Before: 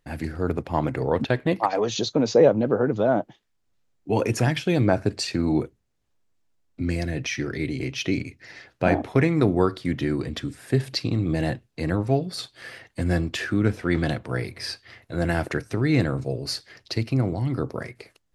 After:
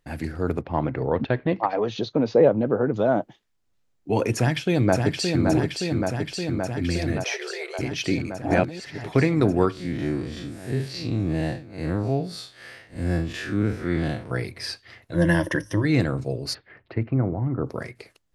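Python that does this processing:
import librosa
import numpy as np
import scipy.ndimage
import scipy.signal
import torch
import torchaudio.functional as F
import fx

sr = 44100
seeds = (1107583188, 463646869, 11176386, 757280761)

y = fx.air_absorb(x, sr, metres=240.0, at=(0.61, 2.94))
y = fx.echo_throw(y, sr, start_s=4.35, length_s=1.09, ms=570, feedback_pct=80, wet_db=-4.0)
y = fx.brickwall_highpass(y, sr, low_hz=360.0, at=(7.24, 7.79))
y = fx.spec_blur(y, sr, span_ms=105.0, at=(9.72, 14.31))
y = fx.ripple_eq(y, sr, per_octave=1.2, db=16, at=(15.14, 15.85))
y = fx.lowpass(y, sr, hz=fx.line((16.53, 2600.0), (17.65, 1400.0)), slope=24, at=(16.53, 17.65), fade=0.02)
y = fx.edit(y, sr, fx.reverse_span(start_s=8.42, length_s=0.62), tone=tone)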